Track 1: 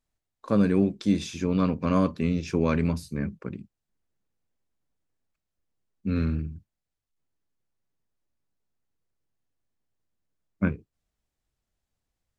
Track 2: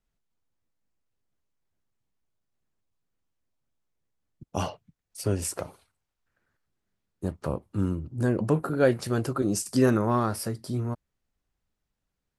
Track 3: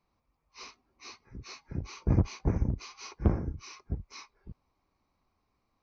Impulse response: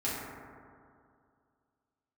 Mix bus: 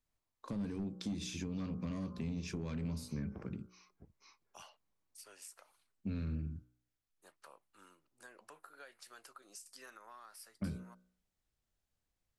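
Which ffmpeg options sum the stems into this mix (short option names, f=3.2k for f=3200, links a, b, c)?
-filter_complex "[0:a]bandreject=f=61.06:t=h:w=4,bandreject=f=122.12:t=h:w=4,bandreject=f=183.18:t=h:w=4,bandreject=f=244.24:t=h:w=4,bandreject=f=305.3:t=h:w=4,bandreject=f=366.36:t=h:w=4,bandreject=f=427.42:t=h:w=4,bandreject=f=488.48:t=h:w=4,bandreject=f=549.54:t=h:w=4,bandreject=f=610.6:t=h:w=4,bandreject=f=671.66:t=h:w=4,bandreject=f=732.72:t=h:w=4,bandreject=f=793.78:t=h:w=4,bandreject=f=854.84:t=h:w=4,bandreject=f=915.9:t=h:w=4,bandreject=f=976.96:t=h:w=4,bandreject=f=1.03802k:t=h:w=4,bandreject=f=1.09908k:t=h:w=4,bandreject=f=1.16014k:t=h:w=4,bandreject=f=1.2212k:t=h:w=4,bandreject=f=1.28226k:t=h:w=4,bandreject=f=1.34332k:t=h:w=4,bandreject=f=1.40438k:t=h:w=4,bandreject=f=1.46544k:t=h:w=4,bandreject=f=1.5265k:t=h:w=4,volume=-4dB[a];[1:a]highpass=1.3k,acompressor=threshold=-40dB:ratio=3,volume=-12dB[b];[2:a]highpass=f=290:p=1,adelay=100,volume=-16.5dB[c];[a][c]amix=inputs=2:normalize=0,asoftclip=type=tanh:threshold=-24dB,acompressor=threshold=-34dB:ratio=6,volume=0dB[d];[b][d]amix=inputs=2:normalize=0,acrossover=split=260|3000[e][f][g];[f]acompressor=threshold=-49dB:ratio=4[h];[e][h][g]amix=inputs=3:normalize=0"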